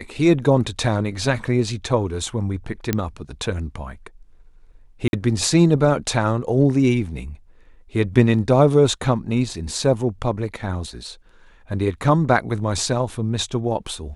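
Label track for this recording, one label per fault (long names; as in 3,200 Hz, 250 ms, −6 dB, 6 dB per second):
2.930000	2.930000	click −6 dBFS
5.080000	5.130000	drop-out 51 ms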